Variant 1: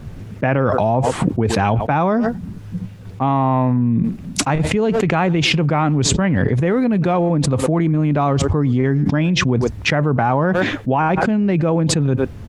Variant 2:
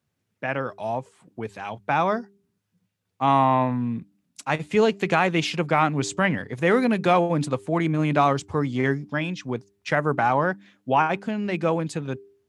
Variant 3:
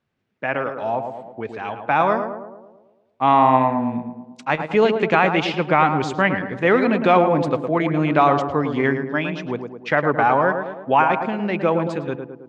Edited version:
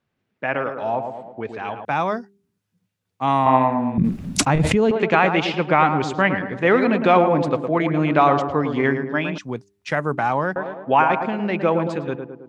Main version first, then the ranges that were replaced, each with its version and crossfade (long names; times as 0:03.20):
3
0:01.85–0:03.46: punch in from 2
0:03.98–0:04.91: punch in from 1
0:09.38–0:10.56: punch in from 2